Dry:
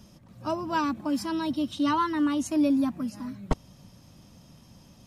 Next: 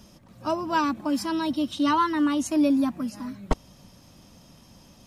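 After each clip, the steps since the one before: bell 120 Hz -6 dB 1.6 oct; gain +3.5 dB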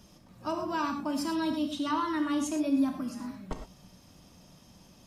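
limiter -18.5 dBFS, peak gain reduction 8.5 dB; non-linear reverb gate 0.14 s flat, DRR 4 dB; gain -5 dB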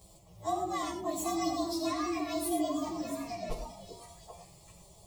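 inharmonic rescaling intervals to 112%; fixed phaser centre 620 Hz, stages 4; delay with a stepping band-pass 0.393 s, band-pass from 300 Hz, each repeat 1.4 oct, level -1 dB; gain +6.5 dB

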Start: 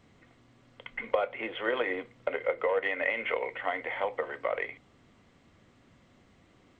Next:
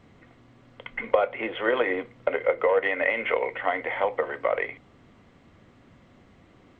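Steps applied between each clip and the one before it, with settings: high shelf 3700 Hz -9 dB; gain +6.5 dB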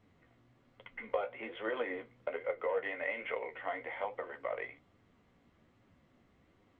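flange 1.2 Hz, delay 8.9 ms, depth 9.2 ms, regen +29%; gain -9 dB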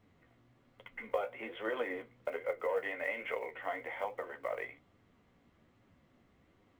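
block floating point 7-bit

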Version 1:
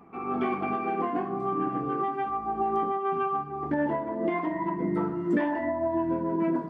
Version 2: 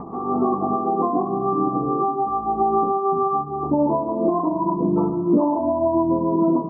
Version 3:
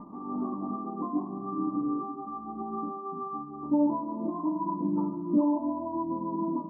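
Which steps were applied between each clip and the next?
steep low-pass 1200 Hz 96 dB/oct; upward compressor, threshold -33 dBFS; gain +8 dB
resonator 300 Hz, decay 0.15 s, harmonics all, mix 90%; small resonant body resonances 210/1000 Hz, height 14 dB; gain -5.5 dB

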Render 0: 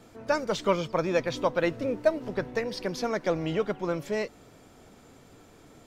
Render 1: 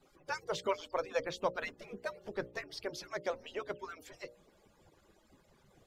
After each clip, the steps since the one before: median-filter separation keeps percussive; notches 60/120/180/240/300/360/420/480/540/600 Hz; gain -6.5 dB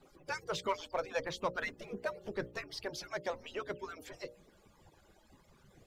phaser 0.49 Hz, delay 1.4 ms, feedback 32%; in parallel at -3 dB: soft clip -35.5 dBFS, distortion -7 dB; on the sum: gain -3 dB

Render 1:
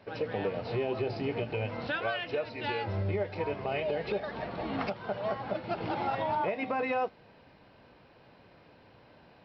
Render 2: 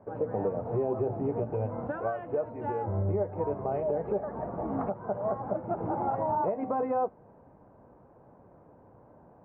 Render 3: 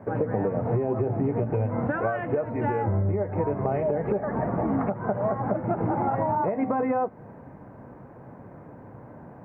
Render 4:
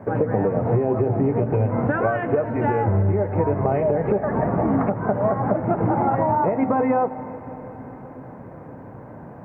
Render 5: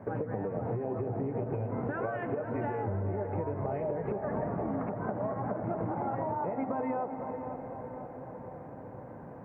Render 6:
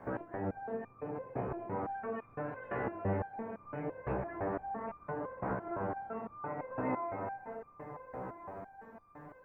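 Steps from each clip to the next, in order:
LPF 1100 Hz 24 dB/oct; gain +2.5 dB
graphic EQ 125/250/2000 Hz +7/+5/+12 dB; compressor, threshold -29 dBFS, peak gain reduction 9 dB; gain +7 dB
reverb RT60 4.9 s, pre-delay 0.153 s, DRR 14 dB; gain +5 dB
compressor, threshold -23 dBFS, peak gain reduction 8 dB; narrowing echo 0.505 s, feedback 67%, band-pass 570 Hz, level -7 dB; gain -7.5 dB
spectral limiter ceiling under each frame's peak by 14 dB; diffused feedback echo 0.505 s, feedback 41%, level -5 dB; stepped resonator 5.9 Hz 64–1200 Hz; gain +5 dB

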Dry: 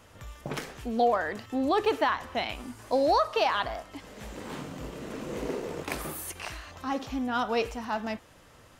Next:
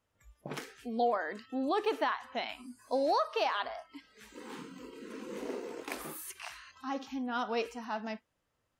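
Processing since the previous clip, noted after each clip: spectral noise reduction 20 dB; gain -5.5 dB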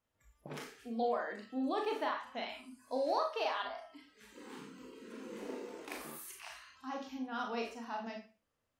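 Schroeder reverb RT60 0.33 s, combs from 27 ms, DRR 1.5 dB; gain -6.5 dB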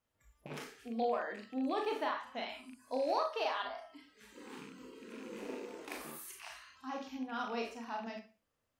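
rattling part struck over -53 dBFS, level -44 dBFS

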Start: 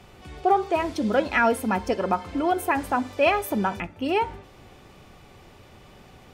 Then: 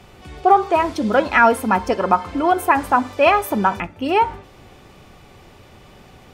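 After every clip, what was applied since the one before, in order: dynamic EQ 1100 Hz, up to +7 dB, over -37 dBFS, Q 1.4; gain +4 dB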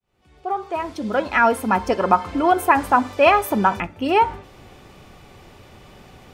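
opening faded in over 2.07 s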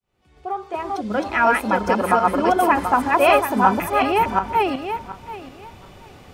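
regenerating reverse delay 0.366 s, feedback 42%, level -0.5 dB; gain -2.5 dB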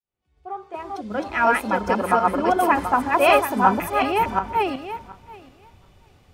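three-band expander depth 40%; gain -2 dB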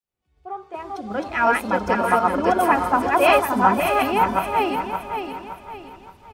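feedback echo 0.569 s, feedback 36%, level -7 dB

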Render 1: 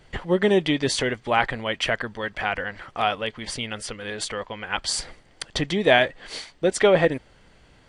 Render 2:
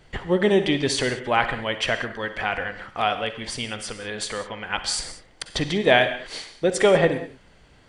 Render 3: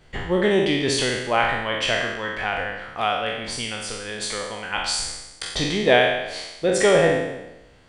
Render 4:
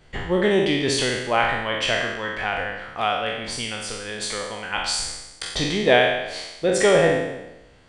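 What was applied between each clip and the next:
reverb, pre-delay 43 ms, DRR 9 dB
spectral trails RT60 0.98 s; gain -2 dB
downsampling 22050 Hz

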